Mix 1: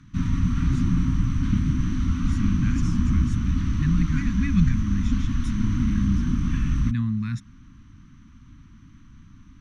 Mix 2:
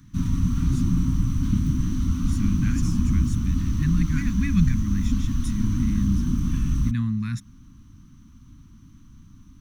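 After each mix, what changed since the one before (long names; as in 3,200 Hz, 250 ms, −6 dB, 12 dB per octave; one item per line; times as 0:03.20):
background: add parametric band 1,900 Hz −9 dB 1.3 octaves
master: remove high-frequency loss of the air 72 metres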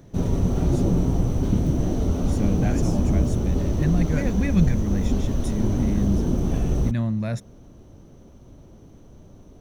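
master: remove elliptic band-stop filter 270–1,100 Hz, stop band 60 dB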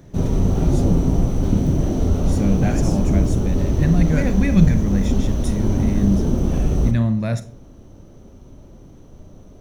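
speech +3.5 dB
reverb: on, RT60 0.40 s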